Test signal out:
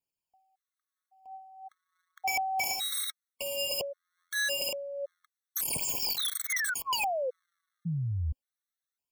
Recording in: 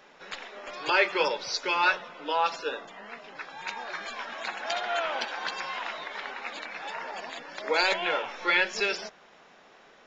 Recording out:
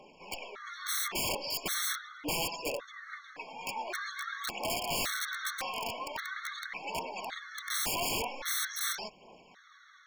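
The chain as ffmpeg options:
-af "aphaser=in_gain=1:out_gain=1:delay=4.6:decay=0.51:speed=0.43:type=triangular,aeval=exprs='(mod(16.8*val(0)+1,2)-1)/16.8':c=same,afftfilt=real='re*gt(sin(2*PI*0.89*pts/sr)*(1-2*mod(floor(b*sr/1024/1100),2)),0)':imag='im*gt(sin(2*PI*0.89*pts/sr)*(1-2*mod(floor(b*sr/1024/1100),2)),0)':win_size=1024:overlap=0.75"

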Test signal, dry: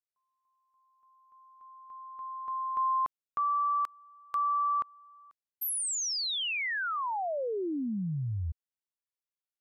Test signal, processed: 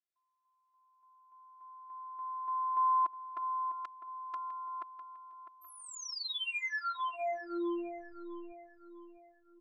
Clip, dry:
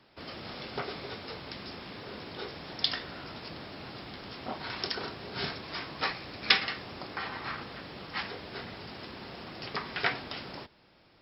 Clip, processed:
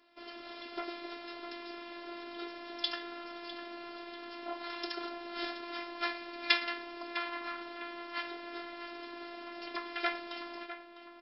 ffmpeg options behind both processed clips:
-filter_complex "[0:a]highpass=210,lowpass=4400,afftfilt=real='hypot(re,im)*cos(PI*b)':imag='0':win_size=512:overlap=0.75,asplit=2[s0][s1];[s1]adelay=653,lowpass=f=2600:p=1,volume=0.282,asplit=2[s2][s3];[s3]adelay=653,lowpass=f=2600:p=1,volume=0.43,asplit=2[s4][s5];[s5]adelay=653,lowpass=f=2600:p=1,volume=0.43,asplit=2[s6][s7];[s7]adelay=653,lowpass=f=2600:p=1,volume=0.43[s8];[s0][s2][s4][s6][s8]amix=inputs=5:normalize=0"

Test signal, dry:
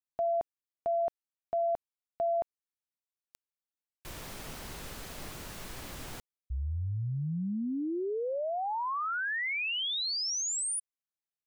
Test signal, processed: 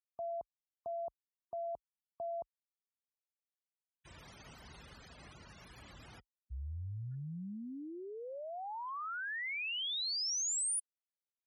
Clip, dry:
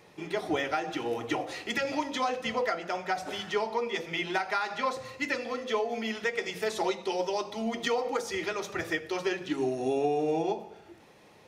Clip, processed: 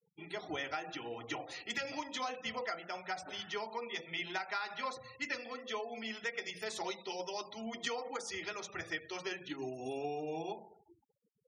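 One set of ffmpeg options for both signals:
-af "equalizer=f=380:t=o:w=2:g=-4.5,acrusher=bits=6:mode=log:mix=0:aa=0.000001,afftfilt=real='re*gte(hypot(re,im),0.00631)':imag='im*gte(hypot(re,im),0.00631)':win_size=1024:overlap=0.75,highpass=f=44:w=0.5412,highpass=f=44:w=1.3066,highshelf=f=3600:g=7,volume=0.398"

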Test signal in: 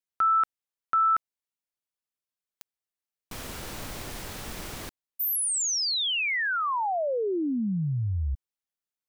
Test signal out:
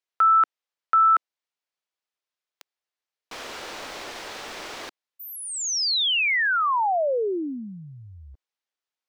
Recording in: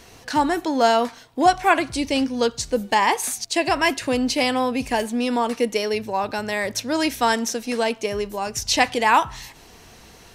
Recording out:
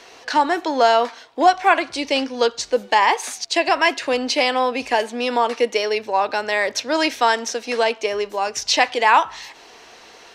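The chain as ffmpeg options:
-filter_complex "[0:a]acrossover=split=330 6400:gain=0.0794 1 0.141[s0][s1][s2];[s0][s1][s2]amix=inputs=3:normalize=0,asplit=2[s3][s4];[s4]alimiter=limit=0.224:level=0:latency=1:release=414,volume=1.06[s5];[s3][s5]amix=inputs=2:normalize=0,volume=0.891"

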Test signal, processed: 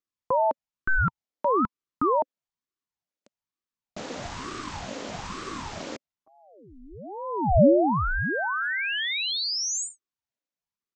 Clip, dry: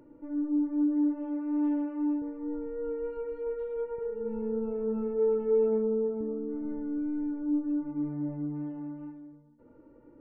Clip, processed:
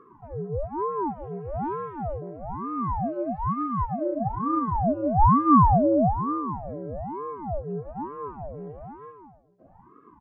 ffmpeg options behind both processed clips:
-af "aresample=16000,aresample=44100,highpass=f=400:t=q:w=4.9,aeval=exprs='val(0)*sin(2*PI*440*n/s+440*0.75/1.1*sin(2*PI*1.1*n/s))':c=same"

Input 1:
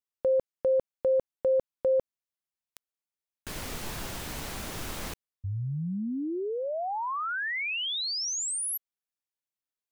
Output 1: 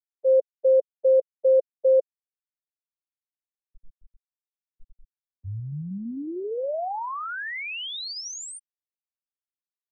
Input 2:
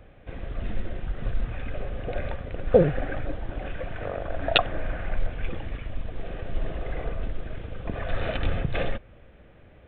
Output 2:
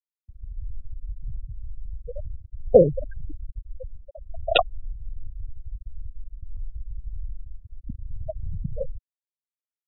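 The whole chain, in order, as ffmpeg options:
-filter_complex "[0:a]afftfilt=real='re*gte(hypot(re,im),0.224)':imag='im*gte(hypot(re,im),0.224)':win_size=1024:overlap=0.75,adynamicequalizer=threshold=0.0141:dfrequency=560:dqfactor=1.2:tfrequency=560:tqfactor=1.2:attack=5:release=100:ratio=0.375:range=3.5:mode=boostabove:tftype=bell,acrossover=split=140|1700[s0][s1][s2];[s0]alimiter=level_in=1.06:limit=0.0631:level=0:latency=1:release=31,volume=0.944[s3];[s3][s1][s2]amix=inputs=3:normalize=0"

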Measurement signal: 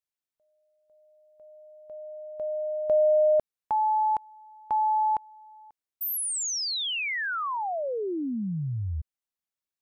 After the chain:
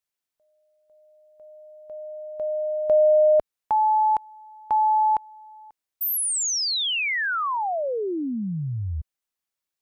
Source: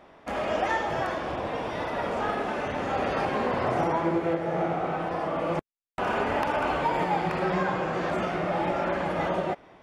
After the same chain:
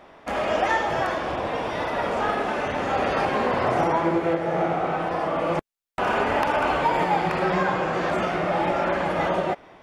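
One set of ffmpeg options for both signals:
-af "equalizer=f=130:w=0.32:g=-3,volume=1.78"

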